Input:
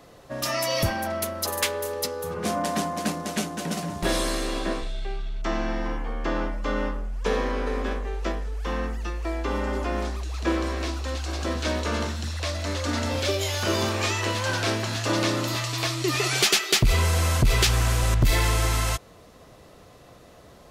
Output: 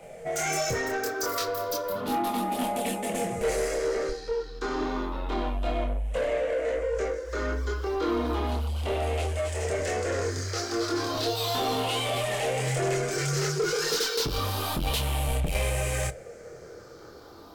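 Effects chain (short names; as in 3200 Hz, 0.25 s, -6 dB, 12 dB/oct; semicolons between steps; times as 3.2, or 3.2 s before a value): moving spectral ripple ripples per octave 0.52, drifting -0.27 Hz, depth 12 dB; bell 410 Hz +11.5 dB 0.51 oct; in parallel at -3 dB: negative-ratio compressor -25 dBFS; on the sum: chorus voices 2, 0.79 Hz, delay 30 ms, depth 2.8 ms; soft clip -18 dBFS, distortion -13 dB; varispeed +18%; on a send at -12 dB: reverb RT60 0.25 s, pre-delay 3 ms; on the sum: gain -4.5 dB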